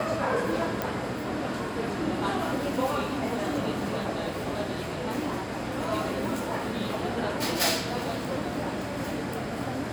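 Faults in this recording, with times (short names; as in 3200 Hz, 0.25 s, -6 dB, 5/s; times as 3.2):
0.82 pop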